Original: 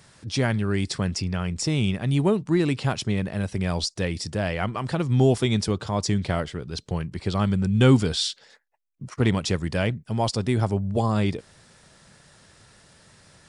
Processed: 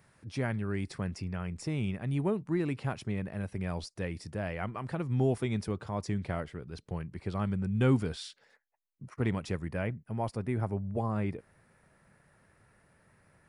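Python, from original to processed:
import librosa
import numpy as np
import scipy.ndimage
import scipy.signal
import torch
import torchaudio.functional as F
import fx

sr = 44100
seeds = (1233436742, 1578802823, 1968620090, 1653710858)

y = fx.band_shelf(x, sr, hz=5000.0, db=fx.steps((0.0, -9.0), (9.64, -15.5)), octaves=1.7)
y = F.gain(torch.from_numpy(y), -9.0).numpy()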